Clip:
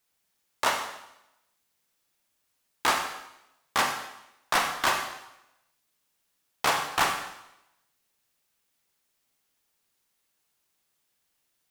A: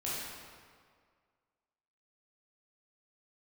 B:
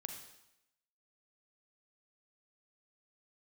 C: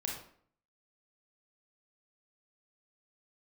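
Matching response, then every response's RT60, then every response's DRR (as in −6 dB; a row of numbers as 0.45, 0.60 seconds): B; 1.9, 0.85, 0.55 seconds; −8.5, 4.0, −1.5 decibels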